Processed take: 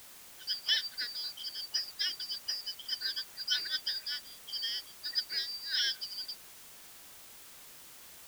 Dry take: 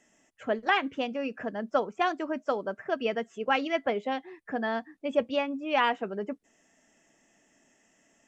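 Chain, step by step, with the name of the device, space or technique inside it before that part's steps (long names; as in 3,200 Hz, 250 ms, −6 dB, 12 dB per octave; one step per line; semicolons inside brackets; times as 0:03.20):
split-band scrambled radio (band-splitting scrambler in four parts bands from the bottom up 4321; band-pass filter 370–3,000 Hz; white noise bed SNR 14 dB)
level +1.5 dB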